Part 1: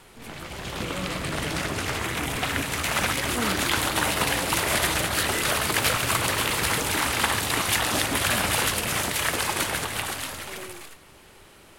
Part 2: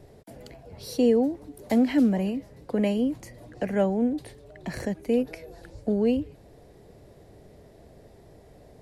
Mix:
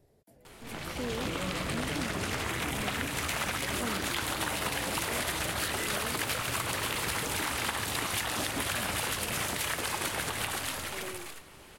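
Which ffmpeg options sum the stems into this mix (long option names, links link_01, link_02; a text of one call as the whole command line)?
ffmpeg -i stem1.wav -i stem2.wav -filter_complex "[0:a]adelay=450,volume=-1dB[link_01];[1:a]highshelf=frequency=9100:gain=11,volume=-15dB[link_02];[link_01][link_02]amix=inputs=2:normalize=0,acompressor=threshold=-29dB:ratio=6" out.wav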